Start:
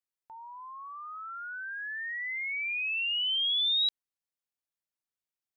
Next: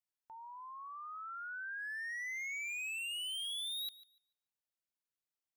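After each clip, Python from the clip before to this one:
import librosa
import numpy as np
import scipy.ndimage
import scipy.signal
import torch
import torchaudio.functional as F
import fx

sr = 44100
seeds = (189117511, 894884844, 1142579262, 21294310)

y = np.clip(10.0 ** (35.0 / 20.0) * x, -1.0, 1.0) / 10.0 ** (35.0 / 20.0)
y = fx.echo_thinned(y, sr, ms=146, feedback_pct=20, hz=420.0, wet_db=-18)
y = y * librosa.db_to_amplitude(-4.5)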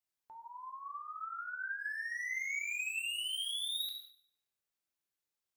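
y = fx.rev_gated(x, sr, seeds[0], gate_ms=230, shape='falling', drr_db=1.0)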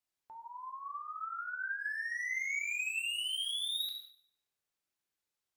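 y = fx.high_shelf(x, sr, hz=11000.0, db=-5.5)
y = y * librosa.db_to_amplitude(2.0)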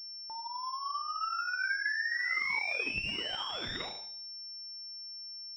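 y = fx.pwm(x, sr, carrier_hz=5400.0)
y = y * librosa.db_to_amplitude(6.0)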